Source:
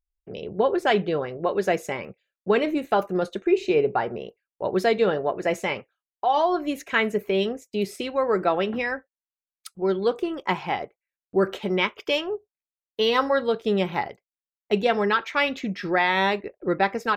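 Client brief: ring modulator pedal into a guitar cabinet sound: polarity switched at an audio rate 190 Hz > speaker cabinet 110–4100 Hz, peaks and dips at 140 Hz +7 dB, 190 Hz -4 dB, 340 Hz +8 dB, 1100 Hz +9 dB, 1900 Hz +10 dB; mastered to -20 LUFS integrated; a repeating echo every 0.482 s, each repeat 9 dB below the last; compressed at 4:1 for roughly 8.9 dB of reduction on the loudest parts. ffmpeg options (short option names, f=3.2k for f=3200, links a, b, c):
-af "acompressor=threshold=-27dB:ratio=4,aecho=1:1:482|964|1446|1928:0.355|0.124|0.0435|0.0152,aeval=exprs='val(0)*sgn(sin(2*PI*190*n/s))':c=same,highpass=110,equalizer=f=140:t=q:w=4:g=7,equalizer=f=190:t=q:w=4:g=-4,equalizer=f=340:t=q:w=4:g=8,equalizer=f=1.1k:t=q:w=4:g=9,equalizer=f=1.9k:t=q:w=4:g=10,lowpass=f=4.1k:w=0.5412,lowpass=f=4.1k:w=1.3066,volume=7.5dB"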